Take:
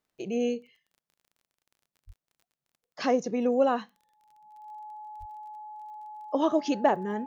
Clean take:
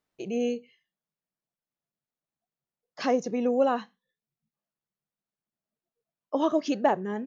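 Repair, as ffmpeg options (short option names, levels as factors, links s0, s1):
-filter_complex "[0:a]adeclick=t=4,bandreject=f=850:w=30,asplit=3[s0][s1][s2];[s0]afade=t=out:st=2.06:d=0.02[s3];[s1]highpass=f=140:w=0.5412,highpass=f=140:w=1.3066,afade=t=in:st=2.06:d=0.02,afade=t=out:st=2.18:d=0.02[s4];[s2]afade=t=in:st=2.18:d=0.02[s5];[s3][s4][s5]amix=inputs=3:normalize=0,asplit=3[s6][s7][s8];[s6]afade=t=out:st=5.19:d=0.02[s9];[s7]highpass=f=140:w=0.5412,highpass=f=140:w=1.3066,afade=t=in:st=5.19:d=0.02,afade=t=out:st=5.31:d=0.02[s10];[s8]afade=t=in:st=5.31:d=0.02[s11];[s9][s10][s11]amix=inputs=3:normalize=0"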